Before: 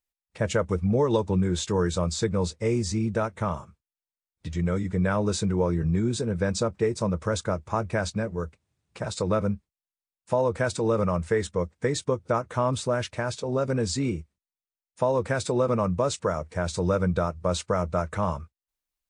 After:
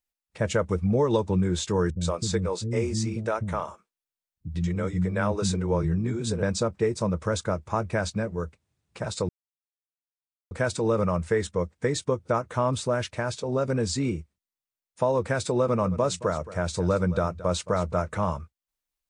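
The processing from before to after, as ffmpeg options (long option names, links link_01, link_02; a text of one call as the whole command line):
ffmpeg -i in.wav -filter_complex "[0:a]asettb=1/sr,asplit=3[link_01][link_02][link_03];[link_01]atrim=end=1.904[link_04];[link_02]atrim=start=1.9:end=6.43,asetpts=PTS-STARTPTS,afade=type=in:duration=0.004:curve=qsin,afade=type=out:start_time=4.526:duration=0.004:curve=qsin,acrossover=split=280[link_05][link_06];[link_06]adelay=110[link_07];[link_05][link_07]amix=inputs=2:normalize=0,atrim=end_sample=199773[link_08];[link_03]atrim=start=6.426[link_09];[link_04][link_08]acrossfade=duration=0.004:curve1=hsin:curve2=qsin[link_10];[link_10][link_09]acrossfade=duration=0.004:curve1=qsin:curve2=hsin,asettb=1/sr,asplit=3[link_11][link_12][link_13];[link_11]atrim=end=15.594[link_14];[link_12]atrim=start=15.59:end=18.23,asetpts=PTS-STARTPTS,afade=type=in:duration=0.004:curve=qsin,afade=type=out:start_time=2.636:duration=0.004:curve=qsin,aecho=1:1:221:0.158,atrim=end_sample=116424[link_15];[link_13]atrim=start=18.226[link_16];[link_14][link_15]acrossfade=duration=0.004:curve1=hsin:curve2=qsin[link_17];[link_17][link_16]acrossfade=duration=0.004:curve1=qsin:curve2=hsin,asplit=3[link_18][link_19][link_20];[link_18]atrim=end=9.29,asetpts=PTS-STARTPTS,afade=type=out:start_time=9.286:duration=0.004:curve=hsin[link_21];[link_19]atrim=start=9.29:end=10.51,asetpts=PTS-STARTPTS,volume=0[link_22];[link_20]atrim=start=10.51,asetpts=PTS-STARTPTS,afade=type=in:duration=0.004:curve=hsin[link_23];[link_21][link_22][link_23]concat=n=3:v=0:a=1" out.wav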